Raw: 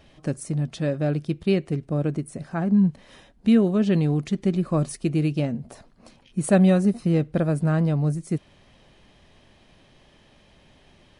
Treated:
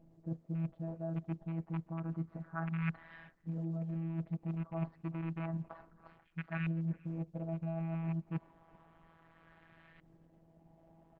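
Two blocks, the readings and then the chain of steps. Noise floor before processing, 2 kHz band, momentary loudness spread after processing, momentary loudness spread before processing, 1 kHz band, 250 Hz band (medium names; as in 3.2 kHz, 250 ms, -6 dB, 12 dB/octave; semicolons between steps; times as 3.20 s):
-57 dBFS, -11.5 dB, 7 LU, 12 LU, -13.0 dB, -18.0 dB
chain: rattle on loud lows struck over -22 dBFS, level -14 dBFS; dynamic bell 1.5 kHz, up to +3 dB, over -37 dBFS, Q 0.76; resampled via 11.025 kHz; in parallel at -1 dB: level held to a coarse grid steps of 15 dB; on the sum: robot voice 164 Hz; LFO low-pass saw up 0.3 Hz 410–1800 Hz; reverse; compression 10:1, threshold -27 dBFS, peak gain reduction 19.5 dB; reverse; peaking EQ 390 Hz -9.5 dB 0.75 oct; band-stop 490 Hz, Q 12; delay 387 ms -23.5 dB; trim -4.5 dB; Opus 12 kbps 48 kHz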